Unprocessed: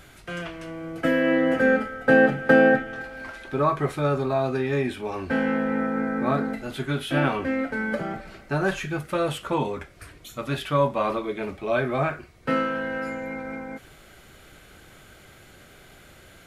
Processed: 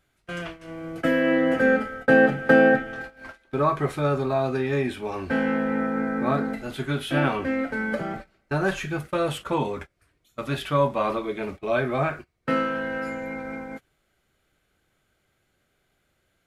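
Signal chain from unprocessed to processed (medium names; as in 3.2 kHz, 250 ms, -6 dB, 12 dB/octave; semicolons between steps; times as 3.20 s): gate -36 dBFS, range -21 dB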